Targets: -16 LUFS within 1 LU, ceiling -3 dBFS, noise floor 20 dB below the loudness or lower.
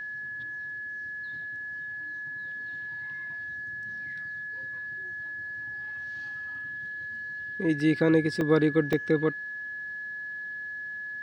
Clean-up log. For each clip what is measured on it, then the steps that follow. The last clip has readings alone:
dropouts 3; longest dropout 1.9 ms; steady tone 1.7 kHz; tone level -34 dBFS; loudness -31.0 LUFS; peak level -9.5 dBFS; loudness target -16.0 LUFS
-> interpolate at 7.80/8.41/8.93 s, 1.9 ms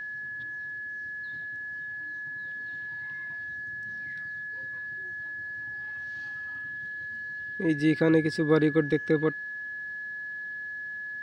dropouts 0; steady tone 1.7 kHz; tone level -34 dBFS
-> band-stop 1.7 kHz, Q 30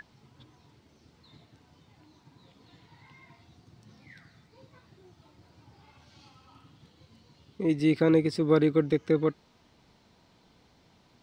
steady tone not found; loudness -25.5 LUFS; peak level -10.0 dBFS; loudness target -16.0 LUFS
-> trim +9.5 dB; peak limiter -3 dBFS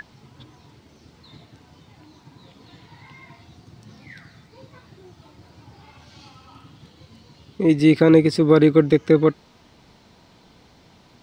loudness -16.5 LUFS; peak level -3.0 dBFS; noise floor -54 dBFS

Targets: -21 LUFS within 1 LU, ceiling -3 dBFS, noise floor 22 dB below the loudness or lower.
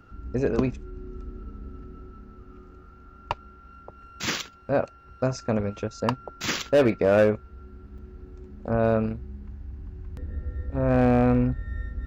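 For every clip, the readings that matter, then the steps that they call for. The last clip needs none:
clipped samples 0.4%; clipping level -13.0 dBFS; dropouts 1; longest dropout 5.1 ms; loudness -25.5 LUFS; peak level -13.0 dBFS; loudness target -21.0 LUFS
-> clip repair -13 dBFS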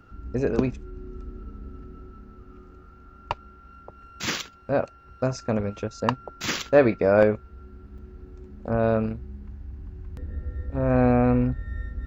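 clipped samples 0.0%; dropouts 1; longest dropout 5.1 ms
-> interpolate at 7.98 s, 5.1 ms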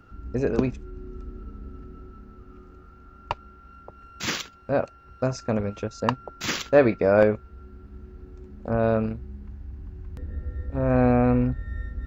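dropouts 0; loudness -25.0 LUFS; peak level -4.0 dBFS; loudness target -21.0 LUFS
-> trim +4 dB; peak limiter -3 dBFS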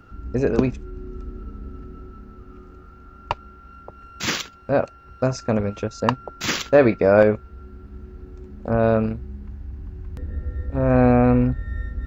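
loudness -21.0 LUFS; peak level -3.0 dBFS; noise floor -46 dBFS

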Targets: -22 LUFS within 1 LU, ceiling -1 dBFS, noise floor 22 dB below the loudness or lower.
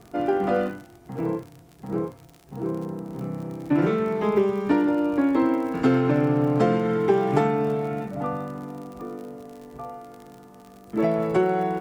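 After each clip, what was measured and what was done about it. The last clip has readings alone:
tick rate 53 per s; loudness -24.0 LUFS; peak level -6.5 dBFS; loudness target -22.0 LUFS
-> de-click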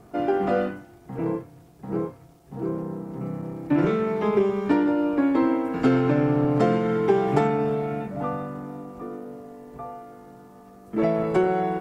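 tick rate 0 per s; loudness -24.0 LUFS; peak level -6.5 dBFS; loudness target -22.0 LUFS
-> trim +2 dB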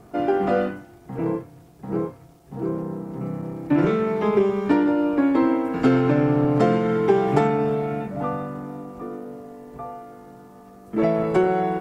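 loudness -22.0 LUFS; peak level -4.5 dBFS; noise floor -48 dBFS

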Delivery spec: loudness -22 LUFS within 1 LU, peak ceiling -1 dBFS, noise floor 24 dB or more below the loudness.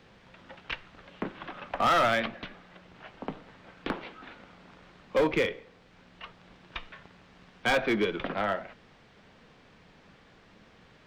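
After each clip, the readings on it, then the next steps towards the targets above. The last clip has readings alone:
clipped samples 1.0%; clipping level -19.5 dBFS; loudness -30.0 LUFS; peak level -19.5 dBFS; loudness target -22.0 LUFS
-> clip repair -19.5 dBFS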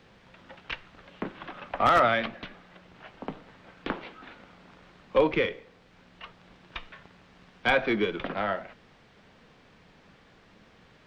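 clipped samples 0.0%; loudness -27.5 LUFS; peak level -10.5 dBFS; loudness target -22.0 LUFS
-> trim +5.5 dB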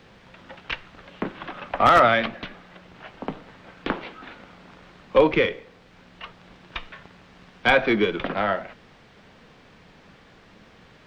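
loudness -22.0 LUFS; peak level -5.0 dBFS; noise floor -53 dBFS

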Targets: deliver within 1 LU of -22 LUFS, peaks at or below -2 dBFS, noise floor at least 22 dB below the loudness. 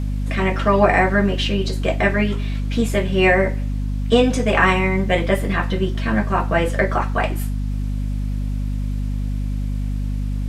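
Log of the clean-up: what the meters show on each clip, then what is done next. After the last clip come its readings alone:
hum 50 Hz; highest harmonic 250 Hz; hum level -20 dBFS; loudness -20.0 LUFS; peak level -1.0 dBFS; loudness target -22.0 LUFS
-> hum notches 50/100/150/200/250 Hz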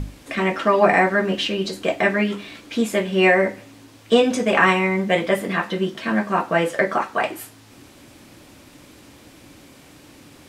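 hum not found; loudness -20.0 LUFS; peak level -2.0 dBFS; loudness target -22.0 LUFS
-> trim -2 dB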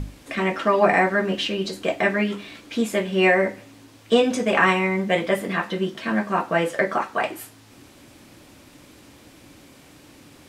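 loudness -22.0 LUFS; peak level -4.0 dBFS; noise floor -50 dBFS

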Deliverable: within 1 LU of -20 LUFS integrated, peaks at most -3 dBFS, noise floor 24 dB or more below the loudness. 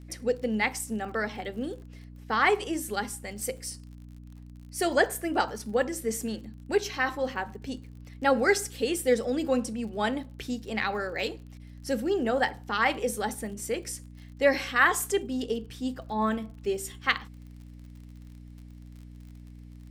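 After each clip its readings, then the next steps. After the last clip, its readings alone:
tick rate 44 per s; hum 60 Hz; highest harmonic 300 Hz; hum level -43 dBFS; loudness -29.0 LUFS; peak level -7.0 dBFS; loudness target -20.0 LUFS
-> de-click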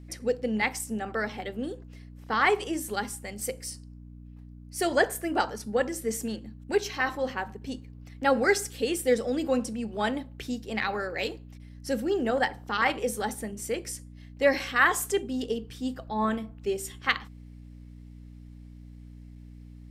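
tick rate 0.050 per s; hum 60 Hz; highest harmonic 300 Hz; hum level -44 dBFS
-> de-hum 60 Hz, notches 5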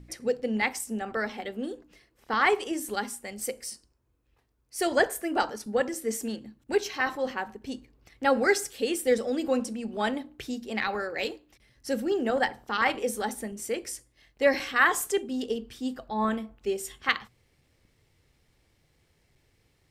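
hum not found; loudness -29.0 LUFS; peak level -7.0 dBFS; loudness target -20.0 LUFS
-> trim +9 dB; peak limiter -3 dBFS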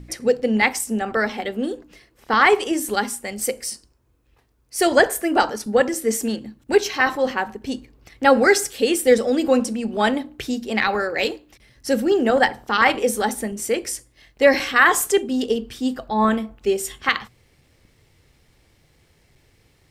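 loudness -20.5 LUFS; peak level -3.0 dBFS; noise floor -61 dBFS

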